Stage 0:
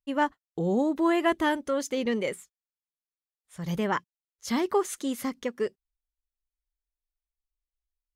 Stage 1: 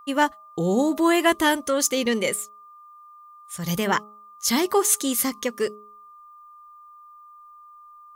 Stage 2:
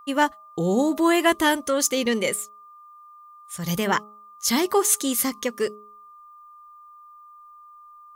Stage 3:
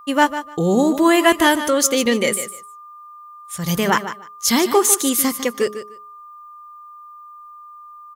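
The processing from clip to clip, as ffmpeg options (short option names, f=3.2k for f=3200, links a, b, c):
-af "crystalizer=i=3.5:c=0,bandreject=f=210.5:t=h:w=4,bandreject=f=421:t=h:w=4,bandreject=f=631.5:t=h:w=4,bandreject=f=842:t=h:w=4,bandreject=f=1.0525k:t=h:w=4,bandreject=f=1.263k:t=h:w=4,aeval=exprs='val(0)+0.00355*sin(2*PI*1200*n/s)':c=same,volume=4dB"
-af anull
-af "aecho=1:1:150|300:0.266|0.0452,volume=5dB"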